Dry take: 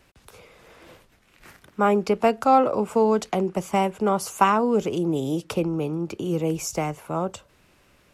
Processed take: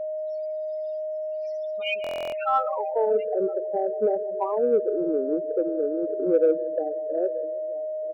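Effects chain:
camcorder AGC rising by 7.1 dB per second
on a send: tape delay 159 ms, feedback 62%, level −14 dB, low-pass 2,200 Hz
0:05.92–0:06.71: on the sum: dynamic equaliser 530 Hz, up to +6 dB, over −37 dBFS, Q 3.4
band-pass filter sweep 5,300 Hz → 480 Hz, 0:01.70–0:03.19
0:01.82–0:02.45: high shelf with overshoot 1,700 Hz +13.5 dB, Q 3
slap from a distant wall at 160 metres, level −17 dB
steady tone 620 Hz −30 dBFS
spectral peaks only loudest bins 8
in parallel at −9 dB: soft clipping −20.5 dBFS, distortion −13 dB
on the sum: buffer that repeats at 0:02.02, samples 1,024, times 12

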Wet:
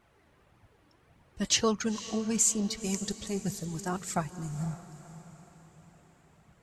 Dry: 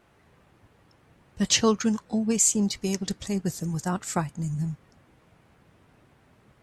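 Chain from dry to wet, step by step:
flanger 1.7 Hz, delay 0.8 ms, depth 2.8 ms, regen +36%
feedback delay with all-pass diffusion 506 ms, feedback 46%, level −14 dB

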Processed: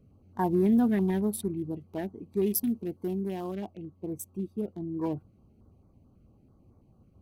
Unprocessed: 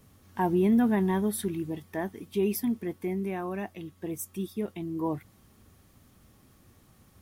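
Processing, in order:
adaptive Wiener filter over 25 samples
0:02.46–0:03.56: high-shelf EQ 4,500 Hz +8.5 dB
notch on a step sequencer 9.1 Hz 930–3,000 Hz

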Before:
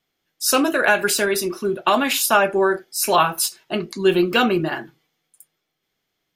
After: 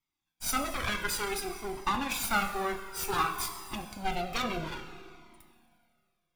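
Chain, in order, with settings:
lower of the sound and its delayed copy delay 0.85 ms
four-comb reverb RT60 2.2 s, combs from 30 ms, DRR 8 dB
flanger whose copies keep moving one way falling 0.56 Hz
level −7 dB

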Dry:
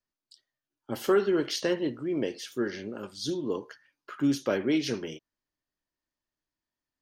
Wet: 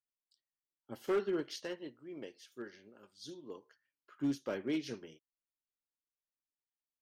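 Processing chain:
hard clipping −19 dBFS, distortion −20 dB
0:01.60–0:03.66: low-shelf EQ 480 Hz −6 dB
expander for the loud parts 1.5 to 1, over −44 dBFS
level −7.5 dB

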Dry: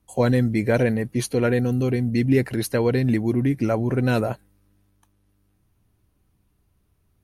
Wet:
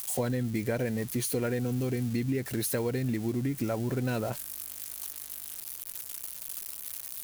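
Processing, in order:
spike at every zero crossing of −23 dBFS
downward compressor, threshold −22 dBFS, peak gain reduction 8.5 dB
level −4.5 dB

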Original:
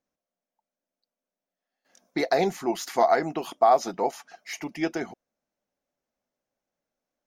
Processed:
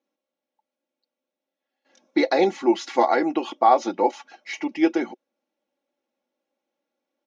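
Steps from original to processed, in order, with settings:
loudspeaker in its box 260–5,200 Hz, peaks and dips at 370 Hz +6 dB, 640 Hz −4 dB, 1,200 Hz −4 dB, 1,700 Hz −5 dB, 4,800 Hz −6 dB
comb filter 3.6 ms, depth 67%
level +4.5 dB

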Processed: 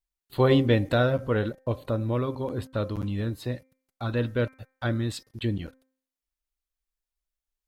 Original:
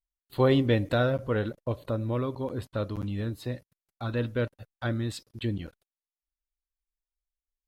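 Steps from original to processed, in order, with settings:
hum removal 261.6 Hz, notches 9
level +2.5 dB

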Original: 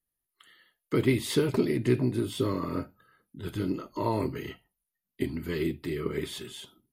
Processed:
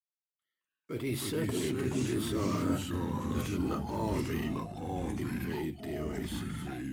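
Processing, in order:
source passing by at 0:02.91, 12 m/s, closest 5.2 metres
downward expander −57 dBFS
high-shelf EQ 7,200 Hz +7 dB
hum removal 67.83 Hz, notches 3
reversed playback
downward compressor, threshold −40 dBFS, peak gain reduction 13 dB
reversed playback
transient designer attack −6 dB, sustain +3 dB
in parallel at −10 dB: sample-rate reduction 8,000 Hz, jitter 0%
on the sum: delay with pitch and tempo change per echo 143 ms, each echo −3 semitones, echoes 3
level +8.5 dB

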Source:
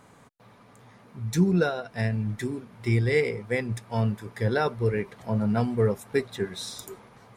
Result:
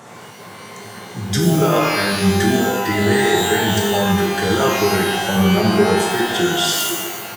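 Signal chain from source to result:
high-pass filter 130 Hz 24 dB per octave
low-shelf EQ 390 Hz −3.5 dB
pitch shifter −2 semitones
boost into a limiter +26.5 dB
reverb with rising layers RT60 1 s, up +12 semitones, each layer −2 dB, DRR −0.5 dB
level −11.5 dB

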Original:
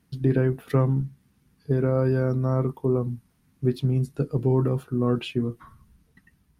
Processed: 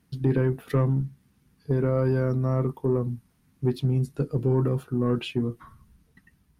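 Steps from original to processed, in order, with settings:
soft clipping −13 dBFS, distortion −20 dB

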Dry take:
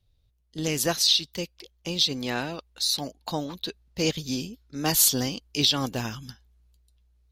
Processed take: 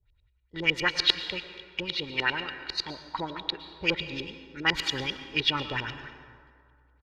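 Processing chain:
auto-filter low-pass saw up 9.6 Hz 360–3,200 Hz
comb filter 2.2 ms, depth 60%
harmonic generator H 2 −20 dB, 5 −33 dB, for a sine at −6 dBFS
graphic EQ with 10 bands 125 Hz −4 dB, 500 Hz −11 dB, 2,000 Hz +10 dB, 4,000 Hz +5 dB
convolution reverb RT60 2.2 s, pre-delay 103 ms, DRR 10.5 dB
wrong playback speed 24 fps film run at 25 fps
level −3.5 dB

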